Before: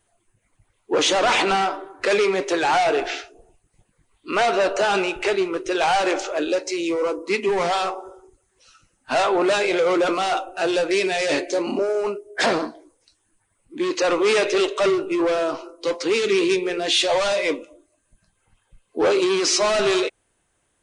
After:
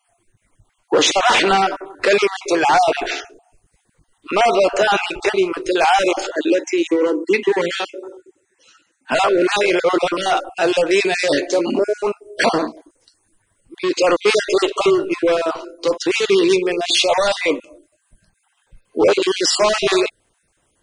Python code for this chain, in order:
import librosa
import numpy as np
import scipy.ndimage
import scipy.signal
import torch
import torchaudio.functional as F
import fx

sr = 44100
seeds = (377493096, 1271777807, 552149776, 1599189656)

y = fx.spec_dropout(x, sr, seeds[0], share_pct=29)
y = fx.cabinet(y, sr, low_hz=190.0, low_slope=12, high_hz=8100.0, hz=(320.0, 700.0, 1200.0, 1800.0, 5100.0), db=(8, -8, -8, 4, -8), at=(6.3, 9.12))
y = y * librosa.db_to_amplitude(5.5)